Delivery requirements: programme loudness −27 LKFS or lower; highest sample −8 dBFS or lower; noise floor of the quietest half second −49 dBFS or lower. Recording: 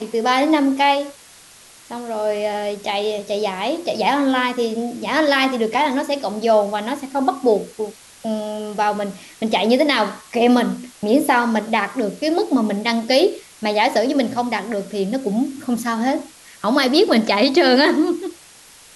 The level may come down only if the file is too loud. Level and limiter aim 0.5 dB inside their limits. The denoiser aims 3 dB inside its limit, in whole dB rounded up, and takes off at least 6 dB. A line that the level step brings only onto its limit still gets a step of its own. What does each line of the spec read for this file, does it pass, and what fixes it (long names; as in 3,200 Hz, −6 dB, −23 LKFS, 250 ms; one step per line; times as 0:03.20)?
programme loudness −19.0 LKFS: out of spec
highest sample −4.0 dBFS: out of spec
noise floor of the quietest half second −46 dBFS: out of spec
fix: level −8.5 dB